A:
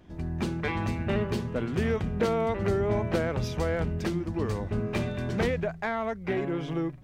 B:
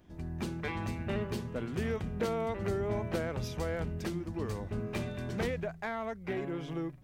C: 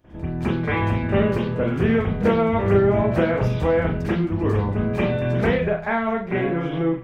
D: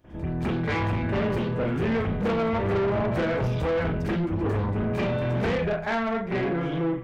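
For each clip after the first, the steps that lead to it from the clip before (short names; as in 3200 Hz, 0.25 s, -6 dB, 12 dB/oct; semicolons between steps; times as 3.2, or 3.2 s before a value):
high shelf 8100 Hz +8.5 dB; gain -6.5 dB
reverb, pre-delay 40 ms, DRR -17 dB; gain -3 dB
soft clip -21.5 dBFS, distortion -9 dB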